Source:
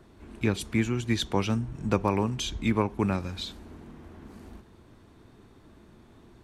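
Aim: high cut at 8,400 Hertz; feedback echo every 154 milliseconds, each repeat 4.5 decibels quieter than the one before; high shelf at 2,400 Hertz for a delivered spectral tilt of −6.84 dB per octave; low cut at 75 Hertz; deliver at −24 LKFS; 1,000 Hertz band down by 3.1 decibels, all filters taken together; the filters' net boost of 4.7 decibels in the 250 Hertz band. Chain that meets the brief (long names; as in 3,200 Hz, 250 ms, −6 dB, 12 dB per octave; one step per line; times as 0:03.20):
high-pass filter 75 Hz
low-pass filter 8,400 Hz
parametric band 250 Hz +6 dB
parametric band 1,000 Hz −3 dB
high-shelf EQ 2,400 Hz −5.5 dB
repeating echo 154 ms, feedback 60%, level −4.5 dB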